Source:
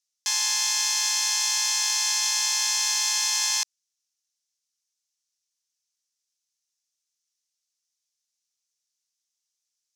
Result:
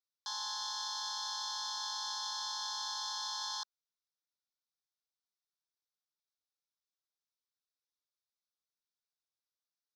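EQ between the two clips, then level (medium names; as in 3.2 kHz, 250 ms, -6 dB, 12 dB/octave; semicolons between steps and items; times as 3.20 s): high-pass 850 Hz 6 dB/octave; elliptic band-stop 1.5–3.5 kHz, stop band 80 dB; distance through air 300 m; 0.0 dB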